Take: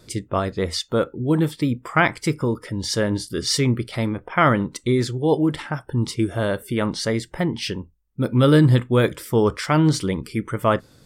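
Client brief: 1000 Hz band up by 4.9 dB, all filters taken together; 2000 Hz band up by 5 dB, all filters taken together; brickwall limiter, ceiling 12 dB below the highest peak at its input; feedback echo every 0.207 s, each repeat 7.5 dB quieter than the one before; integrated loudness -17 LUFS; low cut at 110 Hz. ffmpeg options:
-af "highpass=110,equalizer=f=1k:t=o:g=5,equalizer=f=2k:t=o:g=4.5,alimiter=limit=-9.5dB:level=0:latency=1,aecho=1:1:207|414|621|828|1035:0.422|0.177|0.0744|0.0312|0.0131,volume=5dB"

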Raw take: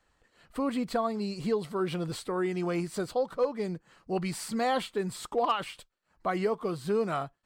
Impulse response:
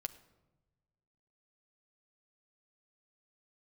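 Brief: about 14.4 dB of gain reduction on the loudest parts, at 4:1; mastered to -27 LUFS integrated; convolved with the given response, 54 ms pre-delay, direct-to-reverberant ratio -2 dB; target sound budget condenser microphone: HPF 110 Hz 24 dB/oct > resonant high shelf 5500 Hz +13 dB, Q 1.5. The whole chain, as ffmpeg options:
-filter_complex "[0:a]acompressor=threshold=-41dB:ratio=4,asplit=2[a][b];[1:a]atrim=start_sample=2205,adelay=54[c];[b][c]afir=irnorm=-1:irlink=0,volume=4dB[d];[a][d]amix=inputs=2:normalize=0,highpass=f=110:w=0.5412,highpass=f=110:w=1.3066,highshelf=f=5.5k:t=q:w=1.5:g=13,volume=8.5dB"

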